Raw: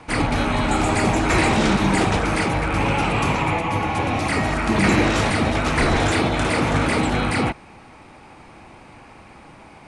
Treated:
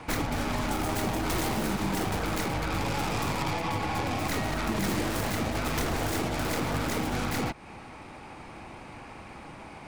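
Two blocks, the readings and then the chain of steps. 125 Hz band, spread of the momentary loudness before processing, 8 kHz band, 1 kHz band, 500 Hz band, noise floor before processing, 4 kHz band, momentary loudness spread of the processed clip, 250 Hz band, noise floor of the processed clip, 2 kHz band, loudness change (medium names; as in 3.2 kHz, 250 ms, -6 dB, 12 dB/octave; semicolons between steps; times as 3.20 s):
-9.5 dB, 4 LU, -5.5 dB, -10.0 dB, -10.0 dB, -45 dBFS, -8.0 dB, 16 LU, -10.0 dB, -45 dBFS, -11.5 dB, -10.0 dB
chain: tracing distortion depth 0.41 ms; compression 4:1, threshold -28 dBFS, peak gain reduction 12.5 dB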